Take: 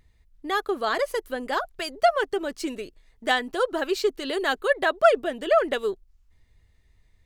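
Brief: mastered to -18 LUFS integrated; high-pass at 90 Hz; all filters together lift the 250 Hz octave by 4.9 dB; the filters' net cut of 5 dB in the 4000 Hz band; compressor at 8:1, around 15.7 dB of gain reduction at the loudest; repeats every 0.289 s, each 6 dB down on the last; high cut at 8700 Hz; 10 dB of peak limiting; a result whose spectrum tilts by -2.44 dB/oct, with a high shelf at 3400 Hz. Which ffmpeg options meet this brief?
-af "highpass=90,lowpass=8.7k,equalizer=f=250:t=o:g=7,highshelf=f=3.4k:g=-5.5,equalizer=f=4k:t=o:g=-3,acompressor=threshold=-28dB:ratio=8,alimiter=level_in=3.5dB:limit=-24dB:level=0:latency=1,volume=-3.5dB,aecho=1:1:289|578|867|1156|1445|1734:0.501|0.251|0.125|0.0626|0.0313|0.0157,volume=17.5dB"

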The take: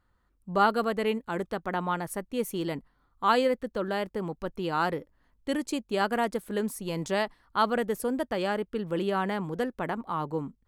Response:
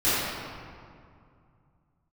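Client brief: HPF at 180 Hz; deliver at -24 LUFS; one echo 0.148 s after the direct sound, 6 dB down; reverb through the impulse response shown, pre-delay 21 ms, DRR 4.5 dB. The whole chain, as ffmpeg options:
-filter_complex "[0:a]highpass=180,aecho=1:1:148:0.501,asplit=2[a][b];[1:a]atrim=start_sample=2205,adelay=21[c];[b][c]afir=irnorm=-1:irlink=0,volume=-21dB[d];[a][d]amix=inputs=2:normalize=0,volume=3.5dB"

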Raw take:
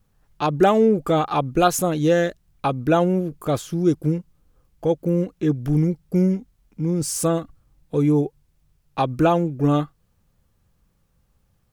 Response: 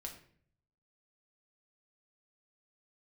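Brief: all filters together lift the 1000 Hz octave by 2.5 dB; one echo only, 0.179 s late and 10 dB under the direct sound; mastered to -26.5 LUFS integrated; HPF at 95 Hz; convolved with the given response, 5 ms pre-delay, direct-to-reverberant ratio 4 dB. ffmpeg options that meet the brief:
-filter_complex "[0:a]highpass=95,equalizer=f=1k:t=o:g=3.5,aecho=1:1:179:0.316,asplit=2[a][b];[1:a]atrim=start_sample=2205,adelay=5[c];[b][c]afir=irnorm=-1:irlink=0,volume=-0.5dB[d];[a][d]amix=inputs=2:normalize=0,volume=-7.5dB"

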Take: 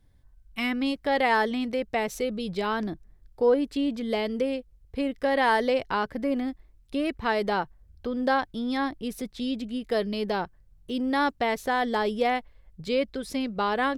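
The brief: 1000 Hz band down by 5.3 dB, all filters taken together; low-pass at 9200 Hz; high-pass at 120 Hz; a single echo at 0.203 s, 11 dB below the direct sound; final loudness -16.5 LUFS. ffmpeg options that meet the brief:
-af "highpass=120,lowpass=9.2k,equalizer=f=1k:t=o:g=-7,aecho=1:1:203:0.282,volume=12.5dB"

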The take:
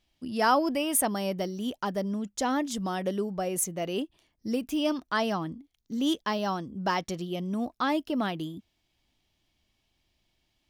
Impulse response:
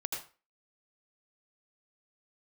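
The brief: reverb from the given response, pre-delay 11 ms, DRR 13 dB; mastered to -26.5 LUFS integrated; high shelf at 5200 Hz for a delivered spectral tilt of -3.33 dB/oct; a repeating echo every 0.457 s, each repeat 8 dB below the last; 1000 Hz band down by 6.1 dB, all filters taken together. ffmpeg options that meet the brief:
-filter_complex "[0:a]equalizer=f=1k:t=o:g=-8.5,highshelf=f=5.2k:g=7.5,aecho=1:1:457|914|1371|1828|2285:0.398|0.159|0.0637|0.0255|0.0102,asplit=2[a][b];[1:a]atrim=start_sample=2205,adelay=11[c];[b][c]afir=irnorm=-1:irlink=0,volume=-15.5dB[d];[a][d]amix=inputs=2:normalize=0,volume=2dB"

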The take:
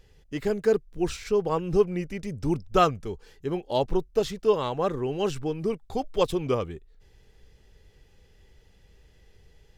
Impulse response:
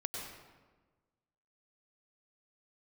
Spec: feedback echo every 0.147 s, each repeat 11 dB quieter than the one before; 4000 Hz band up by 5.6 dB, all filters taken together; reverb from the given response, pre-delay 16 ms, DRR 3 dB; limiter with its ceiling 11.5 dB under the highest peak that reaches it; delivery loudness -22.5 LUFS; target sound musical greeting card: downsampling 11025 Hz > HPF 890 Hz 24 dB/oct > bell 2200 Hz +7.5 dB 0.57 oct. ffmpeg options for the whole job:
-filter_complex "[0:a]equalizer=f=4k:t=o:g=5.5,alimiter=limit=-17.5dB:level=0:latency=1,aecho=1:1:147|294|441:0.282|0.0789|0.0221,asplit=2[a][b];[1:a]atrim=start_sample=2205,adelay=16[c];[b][c]afir=irnorm=-1:irlink=0,volume=-4dB[d];[a][d]amix=inputs=2:normalize=0,aresample=11025,aresample=44100,highpass=f=890:w=0.5412,highpass=f=890:w=1.3066,equalizer=f=2.2k:t=o:w=0.57:g=7.5,volume=12.5dB"

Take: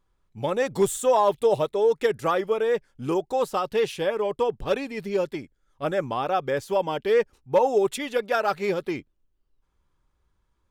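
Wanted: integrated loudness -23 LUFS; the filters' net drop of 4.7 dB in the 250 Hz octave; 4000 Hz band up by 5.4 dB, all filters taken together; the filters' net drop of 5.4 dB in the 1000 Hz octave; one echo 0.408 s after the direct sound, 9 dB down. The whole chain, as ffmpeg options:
-af "equalizer=f=250:t=o:g=-7,equalizer=f=1k:t=o:g=-7,equalizer=f=4k:t=o:g=7.5,aecho=1:1:408:0.355,volume=4.5dB"

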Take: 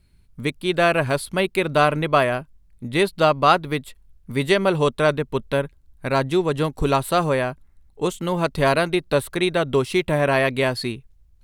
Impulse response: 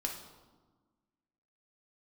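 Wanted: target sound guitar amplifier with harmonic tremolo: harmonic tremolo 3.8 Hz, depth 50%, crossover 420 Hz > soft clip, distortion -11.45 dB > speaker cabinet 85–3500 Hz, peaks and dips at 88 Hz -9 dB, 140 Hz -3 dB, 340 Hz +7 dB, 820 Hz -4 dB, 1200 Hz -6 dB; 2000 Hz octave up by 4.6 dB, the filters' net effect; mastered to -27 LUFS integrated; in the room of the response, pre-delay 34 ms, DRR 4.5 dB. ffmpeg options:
-filter_complex "[0:a]equalizer=f=2k:t=o:g=7,asplit=2[a][b];[1:a]atrim=start_sample=2205,adelay=34[c];[b][c]afir=irnorm=-1:irlink=0,volume=-6dB[d];[a][d]amix=inputs=2:normalize=0,acrossover=split=420[e][f];[e]aeval=exprs='val(0)*(1-0.5/2+0.5/2*cos(2*PI*3.8*n/s))':c=same[g];[f]aeval=exprs='val(0)*(1-0.5/2-0.5/2*cos(2*PI*3.8*n/s))':c=same[h];[g][h]amix=inputs=2:normalize=0,asoftclip=threshold=-14dB,highpass=85,equalizer=f=88:t=q:w=4:g=-9,equalizer=f=140:t=q:w=4:g=-3,equalizer=f=340:t=q:w=4:g=7,equalizer=f=820:t=q:w=4:g=-4,equalizer=f=1.2k:t=q:w=4:g=-6,lowpass=f=3.5k:w=0.5412,lowpass=f=3.5k:w=1.3066,volume=-4.5dB"

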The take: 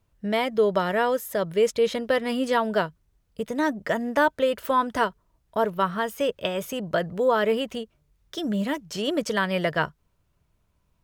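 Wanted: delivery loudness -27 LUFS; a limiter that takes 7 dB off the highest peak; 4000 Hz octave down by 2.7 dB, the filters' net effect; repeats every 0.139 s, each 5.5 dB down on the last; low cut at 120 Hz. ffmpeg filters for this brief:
-af "highpass=120,equalizer=f=4k:t=o:g=-4,alimiter=limit=-16dB:level=0:latency=1,aecho=1:1:139|278|417|556|695|834|973:0.531|0.281|0.149|0.079|0.0419|0.0222|0.0118,volume=-0.5dB"

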